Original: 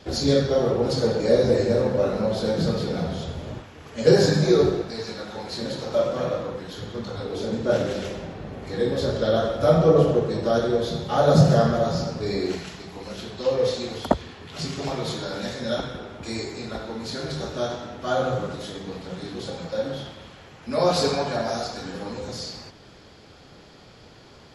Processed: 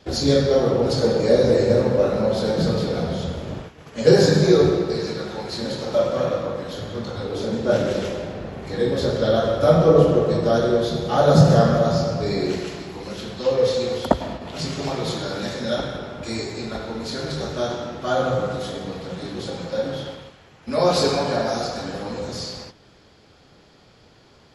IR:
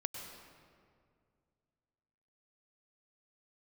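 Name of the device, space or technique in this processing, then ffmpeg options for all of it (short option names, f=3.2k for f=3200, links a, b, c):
keyed gated reverb: -filter_complex "[0:a]asplit=3[a][b][c];[1:a]atrim=start_sample=2205[d];[b][d]afir=irnorm=-1:irlink=0[e];[c]apad=whole_len=1082421[f];[e][f]sidechaingate=range=-33dB:threshold=-41dB:ratio=16:detection=peak,volume=2dB[g];[a][g]amix=inputs=2:normalize=0,volume=-4dB"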